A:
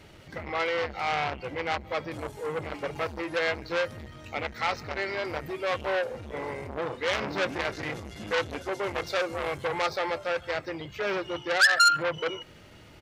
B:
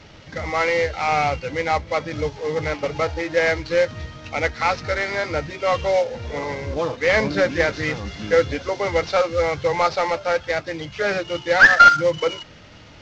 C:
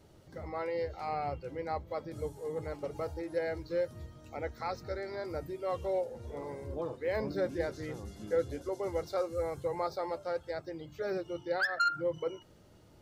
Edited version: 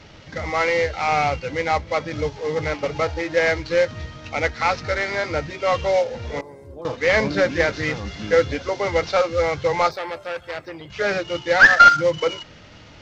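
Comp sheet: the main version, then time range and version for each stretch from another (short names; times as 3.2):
B
6.41–6.85 from C
9.91–10.9 from A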